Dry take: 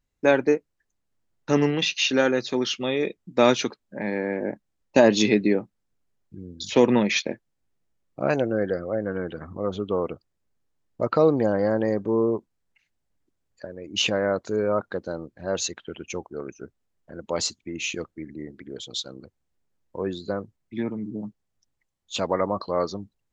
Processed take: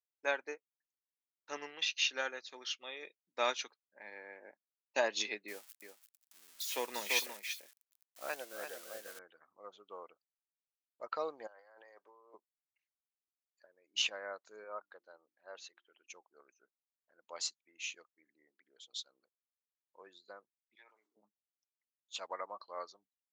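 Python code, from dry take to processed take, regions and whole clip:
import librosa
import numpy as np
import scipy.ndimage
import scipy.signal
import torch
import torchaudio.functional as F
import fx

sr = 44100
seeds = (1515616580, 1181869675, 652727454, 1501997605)

y = fx.chain(x, sr, fx.crossing_spikes(level_db=-22.5),
    fx.echo_single(ms=340, db=-5.5), at=(5.48, 9.19))
y = fx.chain(y, sr, fx.highpass(hz=620.0, slope=12),
    fx.high_shelf(hz=7100.0, db=-11.5),
    fx.over_compress(threshold_db=-34.0, ratio=-1.0), at=(11.47, 12.34))
y = fx.chain(y, sr, fx.highpass(hz=240.0, slope=6),
    fx.air_absorb(metres=170.0),
    fx.hum_notches(base_hz=50, count=7), at=(14.64, 16.07))
y = fx.chain(y, sr, fx.bessel_highpass(hz=740.0, order=4),
    fx.sustainer(db_per_s=46.0), at=(20.75, 21.17))
y = scipy.signal.sosfilt(scipy.signal.butter(2, 880.0, 'highpass', fs=sr, output='sos'), y)
y = fx.upward_expand(y, sr, threshold_db=-48.0, expansion=1.5)
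y = F.gain(torch.from_numpy(y), -7.5).numpy()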